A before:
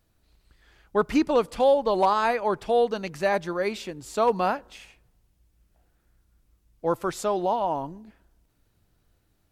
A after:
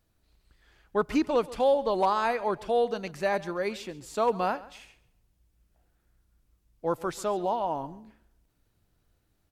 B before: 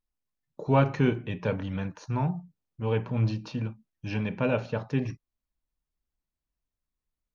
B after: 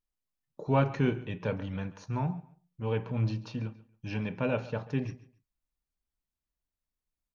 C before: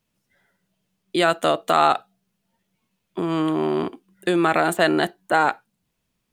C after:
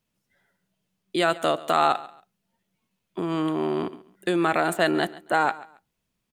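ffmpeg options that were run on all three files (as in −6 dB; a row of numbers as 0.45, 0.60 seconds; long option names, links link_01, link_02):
-af "aecho=1:1:138|276:0.112|0.0269,volume=-3.5dB"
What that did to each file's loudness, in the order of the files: −3.5, −3.5, −3.5 LU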